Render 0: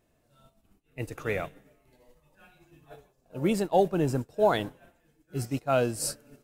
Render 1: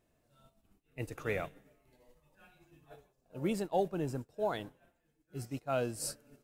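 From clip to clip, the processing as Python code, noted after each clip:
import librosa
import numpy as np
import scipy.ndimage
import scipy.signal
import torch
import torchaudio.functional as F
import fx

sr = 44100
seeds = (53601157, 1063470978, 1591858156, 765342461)

y = fx.rider(x, sr, range_db=10, speed_s=2.0)
y = y * 10.0 ** (-8.5 / 20.0)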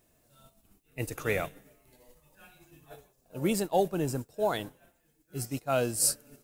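y = fx.high_shelf(x, sr, hz=5700.0, db=12.0)
y = y * 10.0 ** (5.0 / 20.0)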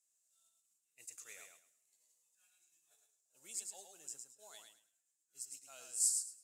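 y = fx.bandpass_q(x, sr, hz=7300.0, q=3.8)
y = fx.echo_feedback(y, sr, ms=108, feedback_pct=22, wet_db=-5)
y = y * 10.0 ** (-1.0 / 20.0)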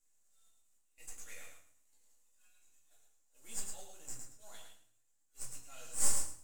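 y = np.where(x < 0.0, 10.0 ** (-7.0 / 20.0) * x, x)
y = fx.room_shoebox(y, sr, seeds[0], volume_m3=180.0, walls='furnished', distance_m=2.3)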